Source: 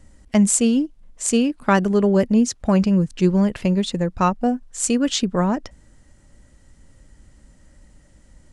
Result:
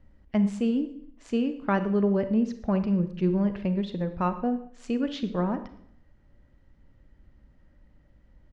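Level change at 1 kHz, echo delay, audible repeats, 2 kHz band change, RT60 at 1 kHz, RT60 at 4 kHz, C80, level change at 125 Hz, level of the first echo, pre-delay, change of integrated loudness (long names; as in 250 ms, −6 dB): −8.5 dB, 116 ms, 2, −10.0 dB, 0.65 s, 0.60 s, 14.5 dB, −7.5 dB, −21.0 dB, 32 ms, −8.0 dB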